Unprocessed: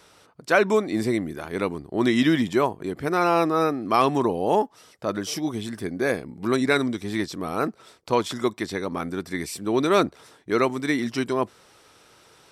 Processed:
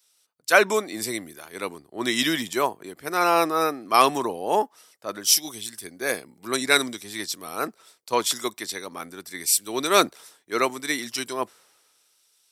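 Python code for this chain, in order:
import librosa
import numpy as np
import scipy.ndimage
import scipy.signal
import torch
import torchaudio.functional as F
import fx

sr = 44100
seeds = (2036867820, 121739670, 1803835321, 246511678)

y = fx.riaa(x, sr, side='recording')
y = fx.band_widen(y, sr, depth_pct=70)
y = F.gain(torch.from_numpy(y), -1.0).numpy()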